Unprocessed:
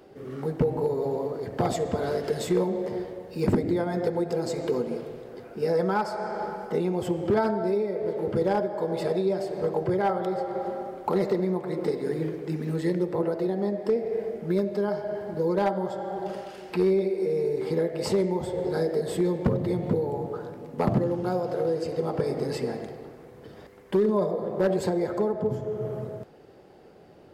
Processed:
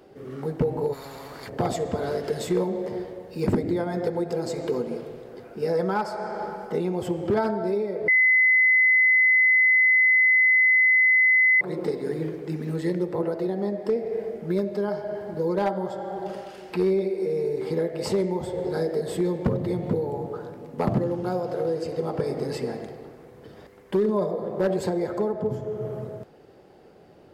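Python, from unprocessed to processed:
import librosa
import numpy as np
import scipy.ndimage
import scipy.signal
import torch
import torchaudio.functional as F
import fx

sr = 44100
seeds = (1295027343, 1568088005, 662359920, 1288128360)

y = fx.spectral_comp(x, sr, ratio=4.0, at=(0.92, 1.48), fade=0.02)
y = fx.edit(y, sr, fx.bleep(start_s=8.08, length_s=3.53, hz=2030.0, db=-15.0), tone=tone)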